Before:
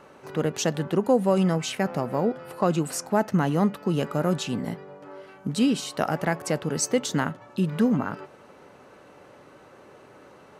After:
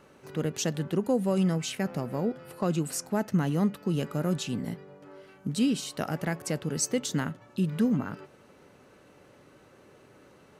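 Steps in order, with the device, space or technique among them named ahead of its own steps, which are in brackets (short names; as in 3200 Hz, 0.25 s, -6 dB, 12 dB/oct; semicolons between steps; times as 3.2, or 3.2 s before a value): smiley-face EQ (low shelf 150 Hz +3.5 dB; bell 870 Hz -6 dB 1.7 oct; high shelf 8500 Hz +4 dB); gain -3.5 dB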